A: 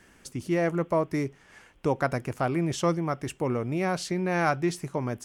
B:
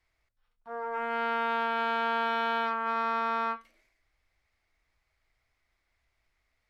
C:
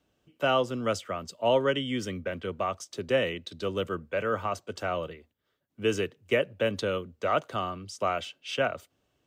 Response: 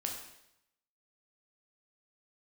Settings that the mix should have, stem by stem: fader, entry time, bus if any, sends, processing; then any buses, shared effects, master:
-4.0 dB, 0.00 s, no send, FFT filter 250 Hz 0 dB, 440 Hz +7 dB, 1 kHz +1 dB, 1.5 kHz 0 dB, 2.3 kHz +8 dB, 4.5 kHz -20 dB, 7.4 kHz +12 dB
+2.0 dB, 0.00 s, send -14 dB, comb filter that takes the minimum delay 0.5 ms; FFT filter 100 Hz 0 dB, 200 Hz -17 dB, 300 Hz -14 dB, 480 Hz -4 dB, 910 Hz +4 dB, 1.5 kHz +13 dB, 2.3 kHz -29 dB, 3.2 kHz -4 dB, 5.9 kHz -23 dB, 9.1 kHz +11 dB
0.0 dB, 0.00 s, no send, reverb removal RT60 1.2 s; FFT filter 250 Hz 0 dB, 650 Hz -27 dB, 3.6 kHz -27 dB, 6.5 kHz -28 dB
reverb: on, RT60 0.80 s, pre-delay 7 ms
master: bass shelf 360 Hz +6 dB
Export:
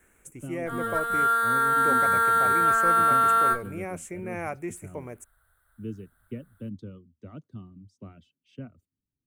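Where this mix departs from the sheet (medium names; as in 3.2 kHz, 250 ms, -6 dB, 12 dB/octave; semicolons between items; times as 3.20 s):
stem A -4.0 dB -> -11.5 dB; stem B +2.0 dB -> +8.5 dB; master: missing bass shelf 360 Hz +6 dB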